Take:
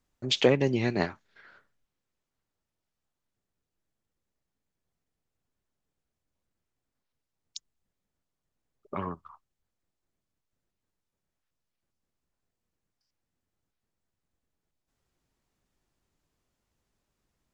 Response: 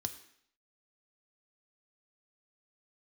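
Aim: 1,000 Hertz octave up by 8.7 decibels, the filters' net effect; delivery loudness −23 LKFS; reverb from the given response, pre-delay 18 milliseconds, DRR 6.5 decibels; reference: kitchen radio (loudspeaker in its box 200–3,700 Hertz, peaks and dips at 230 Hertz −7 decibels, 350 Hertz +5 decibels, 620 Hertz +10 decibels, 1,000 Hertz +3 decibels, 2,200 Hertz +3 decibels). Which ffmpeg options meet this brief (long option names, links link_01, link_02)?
-filter_complex "[0:a]equalizer=frequency=1000:width_type=o:gain=7,asplit=2[link_01][link_02];[1:a]atrim=start_sample=2205,adelay=18[link_03];[link_02][link_03]afir=irnorm=-1:irlink=0,volume=-5.5dB[link_04];[link_01][link_04]amix=inputs=2:normalize=0,highpass=200,equalizer=frequency=230:width_type=q:width=4:gain=-7,equalizer=frequency=350:width_type=q:width=4:gain=5,equalizer=frequency=620:width_type=q:width=4:gain=10,equalizer=frequency=1000:width_type=q:width=4:gain=3,equalizer=frequency=2200:width_type=q:width=4:gain=3,lowpass=frequency=3700:width=0.5412,lowpass=frequency=3700:width=1.3066"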